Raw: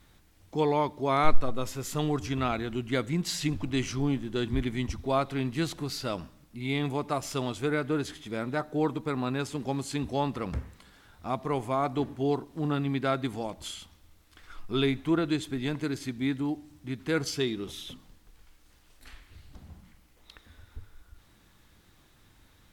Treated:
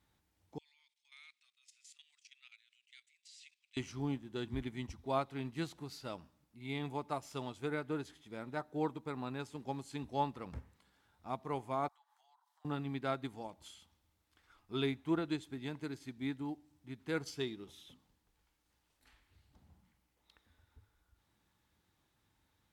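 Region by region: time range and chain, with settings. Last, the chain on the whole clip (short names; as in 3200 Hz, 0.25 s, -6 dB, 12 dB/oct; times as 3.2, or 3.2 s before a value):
0.58–3.77 elliptic band-pass 2300–9100 Hz, stop band 70 dB + level quantiser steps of 14 dB
11.88–12.65 steep high-pass 830 Hz 48 dB/oct + bell 2500 Hz -9.5 dB 0.4 oct + compressor, threshold -55 dBFS
whole clip: HPF 52 Hz; bell 870 Hz +6 dB 0.24 oct; upward expander 1.5:1, over -39 dBFS; gain -7 dB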